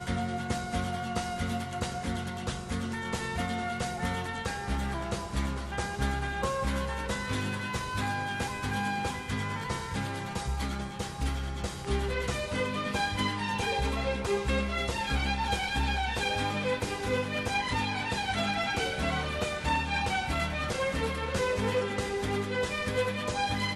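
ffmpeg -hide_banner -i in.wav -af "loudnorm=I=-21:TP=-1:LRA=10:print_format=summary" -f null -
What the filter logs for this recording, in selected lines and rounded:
Input Integrated:    -31.2 LUFS
Input True Peak:     -15.4 dBTP
Input LRA:             3.6 LU
Input Threshold:     -41.2 LUFS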